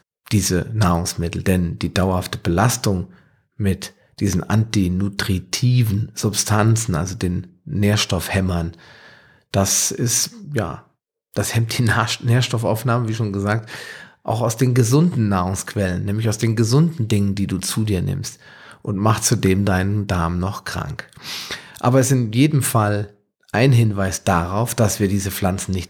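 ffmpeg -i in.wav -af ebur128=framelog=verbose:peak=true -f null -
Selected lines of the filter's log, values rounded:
Integrated loudness:
  I:         -19.5 LUFS
  Threshold: -29.9 LUFS
Loudness range:
  LRA:         2.7 LU
  Threshold: -40.0 LUFS
  LRA low:   -21.2 LUFS
  LRA high:  -18.5 LUFS
True peak:
  Peak:       -2.3 dBFS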